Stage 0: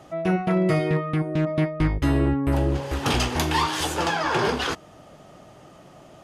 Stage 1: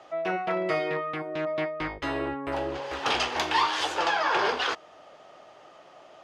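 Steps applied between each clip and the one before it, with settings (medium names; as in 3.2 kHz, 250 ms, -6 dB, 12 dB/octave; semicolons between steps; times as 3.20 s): three-band isolator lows -21 dB, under 410 Hz, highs -21 dB, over 5.9 kHz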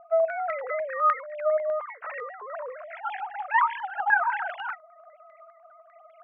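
formants replaced by sine waves; step-sequenced low-pass 10 Hz 990–2100 Hz; trim -3.5 dB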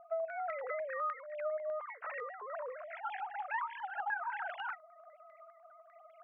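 compression 4:1, threshold -30 dBFS, peak gain reduction 12.5 dB; trim -5.5 dB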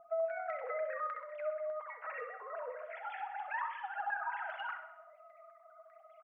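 feedback delay 64 ms, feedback 51%, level -9 dB; on a send at -5.5 dB: reverberation RT60 0.95 s, pre-delay 6 ms; on the sum: trim -2.5 dB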